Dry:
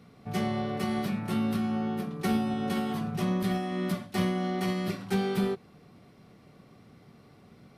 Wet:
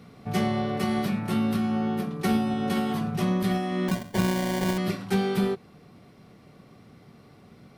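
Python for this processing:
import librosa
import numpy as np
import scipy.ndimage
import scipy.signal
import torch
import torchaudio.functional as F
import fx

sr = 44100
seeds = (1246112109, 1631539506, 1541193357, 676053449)

p1 = fx.rider(x, sr, range_db=10, speed_s=0.5)
p2 = x + F.gain(torch.from_numpy(p1), -2.0).numpy()
p3 = fx.sample_hold(p2, sr, seeds[0], rate_hz=1300.0, jitter_pct=0, at=(3.88, 4.78))
y = F.gain(torch.from_numpy(p3), -1.5).numpy()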